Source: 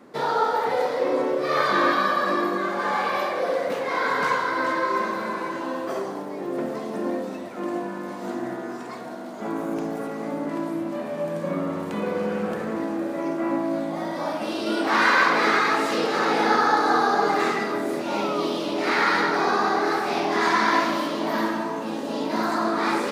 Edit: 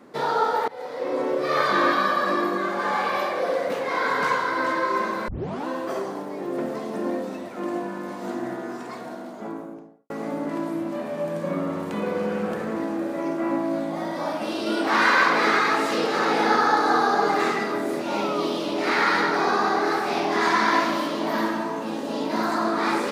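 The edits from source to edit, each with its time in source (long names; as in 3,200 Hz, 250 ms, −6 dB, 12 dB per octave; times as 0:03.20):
0:00.68–0:01.35: fade in, from −22 dB
0:05.28: tape start 0.39 s
0:09.07–0:10.10: fade out and dull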